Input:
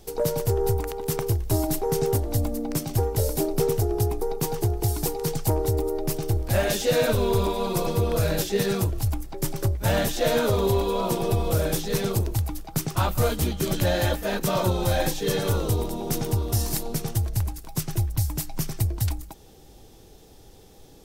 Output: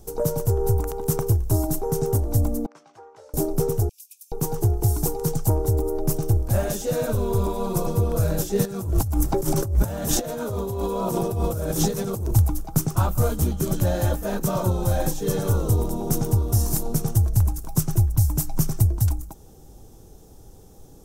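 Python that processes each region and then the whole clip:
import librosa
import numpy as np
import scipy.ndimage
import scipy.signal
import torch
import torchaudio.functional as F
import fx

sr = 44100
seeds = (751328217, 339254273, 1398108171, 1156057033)

y = fx.chain(x, sr, fx.highpass(hz=1400.0, slope=12),
    fx.spacing_loss(db_at_10k=39), at=(2.66, 3.34))
y = fx.chain(y, sr, fx.over_compress(threshold_db=-26.0, ratio=-1.0),
    fx.brickwall_highpass(low_hz=2300.0), at=(3.89, 4.32))
y = fx.chain(y, sr, fx.highpass(hz=61.0, slope=6),
    fx.over_compress(threshold_db=-35.0, ratio=-1.0), at=(8.65, 12.31))
y = fx.band_shelf(y, sr, hz=2900.0, db=-9.0, octaves=1.7)
y = fx.rider(y, sr, range_db=10, speed_s=0.5)
y = fx.bass_treble(y, sr, bass_db=5, treble_db=2)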